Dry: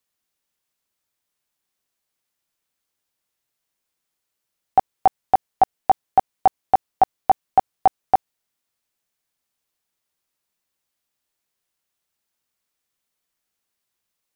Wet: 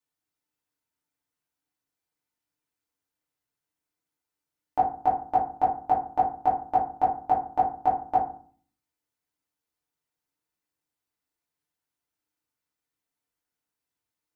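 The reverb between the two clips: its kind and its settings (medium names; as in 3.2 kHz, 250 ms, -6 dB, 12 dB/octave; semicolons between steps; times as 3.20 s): FDN reverb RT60 0.46 s, low-frequency decay 1.5×, high-frequency decay 0.4×, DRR -6 dB; trim -13 dB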